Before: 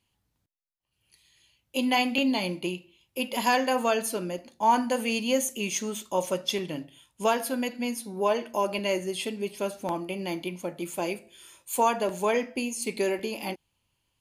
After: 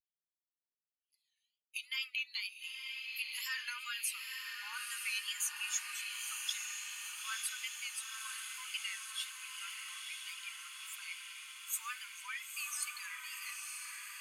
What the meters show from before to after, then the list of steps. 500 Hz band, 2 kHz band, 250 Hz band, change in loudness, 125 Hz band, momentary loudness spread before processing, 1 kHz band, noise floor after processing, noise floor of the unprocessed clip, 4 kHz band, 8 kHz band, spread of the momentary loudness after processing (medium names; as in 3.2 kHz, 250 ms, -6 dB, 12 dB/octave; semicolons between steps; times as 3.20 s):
under -40 dB, -6.0 dB, under -40 dB, -11.5 dB, under -40 dB, 11 LU, -23.5 dB, under -85 dBFS, -77 dBFS, -5.5 dB, -3.5 dB, 7 LU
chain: expander on every frequency bin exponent 1.5; peak limiter -22 dBFS, peak gain reduction 9.5 dB; steep high-pass 1.2 kHz 72 dB/octave; wow and flutter 110 cents; echo that smears into a reverb 940 ms, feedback 72%, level -4 dB; trim -2 dB